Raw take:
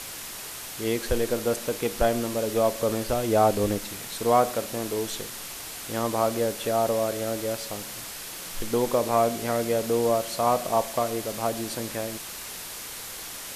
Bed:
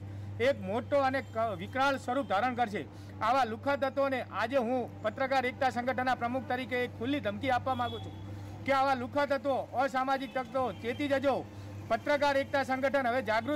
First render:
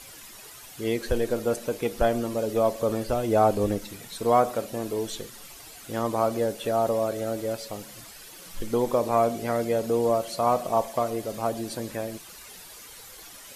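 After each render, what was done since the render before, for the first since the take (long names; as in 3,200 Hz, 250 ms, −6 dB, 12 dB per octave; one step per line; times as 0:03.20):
broadband denoise 11 dB, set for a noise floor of −38 dBFS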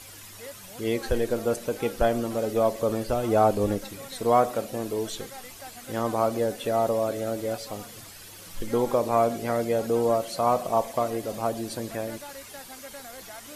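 mix in bed −15 dB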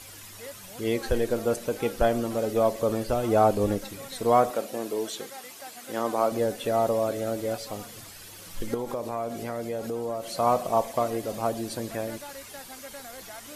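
0:04.50–0:06.32: high-pass filter 230 Hz
0:08.74–0:10.35: downward compressor 2.5 to 1, threshold −31 dBFS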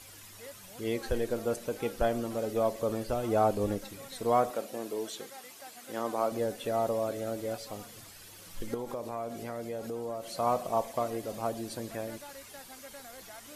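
level −5.5 dB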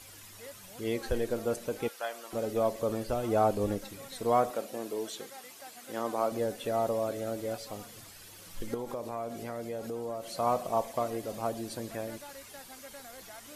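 0:01.88–0:02.33: high-pass filter 970 Hz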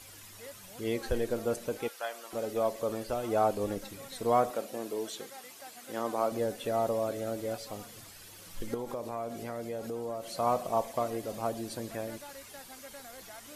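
0:01.77–0:03.77: low-shelf EQ 250 Hz −7 dB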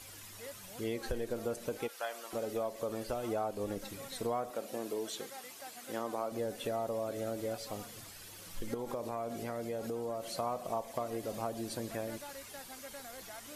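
downward compressor 4 to 1, threshold −33 dBFS, peak gain reduction 11 dB
every ending faded ahead of time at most 550 dB per second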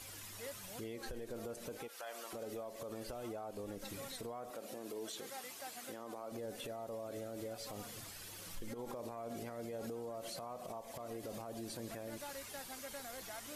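downward compressor, threshold −38 dBFS, peak gain reduction 8 dB
brickwall limiter −36 dBFS, peak gain reduction 10.5 dB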